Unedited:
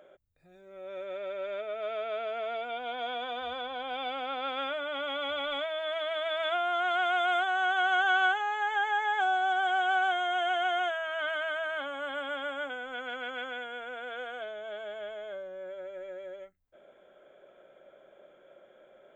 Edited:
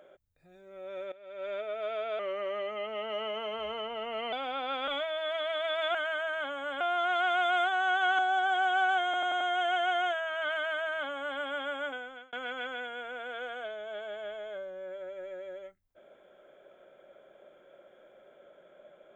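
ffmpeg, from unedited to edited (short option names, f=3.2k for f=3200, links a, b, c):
-filter_complex "[0:a]asplit=13[a][b][c][d][e][f][g][h][i][j][k][l][m];[a]atrim=end=1.12,asetpts=PTS-STARTPTS,afade=t=out:st=1.116:d=0.004:c=hsin:silence=0.133352[n];[b]atrim=start=1.12:end=2.194,asetpts=PTS-STARTPTS,afade=t=in:d=0.36:c=qua:silence=0.133352[o];[c]atrim=start=2.19:end=4.07,asetpts=PTS-STARTPTS,asetrate=38808,aresample=44100[p];[d]atrim=start=4.066:end=4.622[q];[e]atrim=start=5.488:end=6.562[r];[f]atrim=start=11.308:end=12.172[s];[g]atrim=start=6.558:end=7.942[t];[h]atrim=start=9.318:end=10.272[u];[i]atrim=start=10.178:end=10.272[v];[j]atrim=start=10.178:end=10.272[w];[k]atrim=start=10.178:end=10.272[x];[l]atrim=start=10.178:end=13.1,asetpts=PTS-STARTPTS,afade=t=out:st=2.512:d=0.41[y];[m]atrim=start=13.1,asetpts=PTS-STARTPTS,afade=t=in:d=0.004:c=hsin[z];[n][o]concat=n=2:v=0:a=1[aa];[aa][p]acrossfade=d=0.004:c1=hsin:c2=hsin[ab];[ab][q]acrossfade=d=0.004:c1=hsin:c2=hsin[ac];[ac][r]acrossfade=d=0.004:c1=hsin:c2=hsin[ad];[ad][s]acrossfade=d=0.004:c1=hsin:c2=hsin[ae];[ae][t]acrossfade=d=0.004:c1=hsin:c2=hsin[af];[af][u]acrossfade=d=0.004:c1=hsin:c2=hsin[ag];[ag][v]acrossfade=d=0.004:c1=hsin:c2=hsin[ah];[ah][w]acrossfade=d=0.004:c1=hsin:c2=hsin[ai];[ai][x]acrossfade=d=0.004:c1=hsin:c2=hsin[aj];[y][z]concat=n=2:v=0:a=1[ak];[aj][ak]acrossfade=d=0.004:c1=hsin:c2=hsin"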